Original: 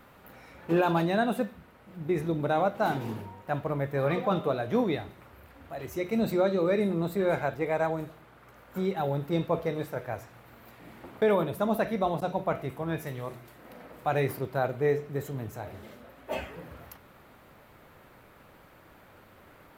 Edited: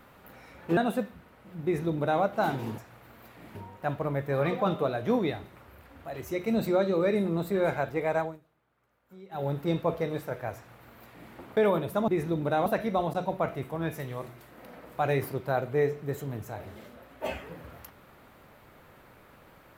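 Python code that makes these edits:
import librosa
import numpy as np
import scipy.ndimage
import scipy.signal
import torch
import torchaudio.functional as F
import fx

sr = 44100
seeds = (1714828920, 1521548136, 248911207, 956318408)

y = fx.edit(x, sr, fx.cut(start_s=0.77, length_s=0.42),
    fx.duplicate(start_s=2.06, length_s=0.58, to_s=11.73),
    fx.fade_down_up(start_s=7.83, length_s=1.3, db=-19.5, fade_s=0.2),
    fx.duplicate(start_s=10.21, length_s=0.77, to_s=3.2), tone=tone)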